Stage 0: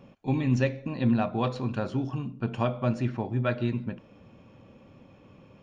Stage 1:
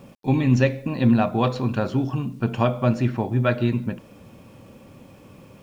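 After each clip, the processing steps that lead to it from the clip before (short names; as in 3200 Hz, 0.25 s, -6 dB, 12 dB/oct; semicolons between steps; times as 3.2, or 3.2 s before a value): bit-crush 11-bit; gain +6.5 dB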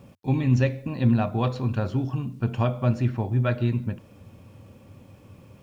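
bell 92 Hz +11.5 dB 0.76 oct; gain -5.5 dB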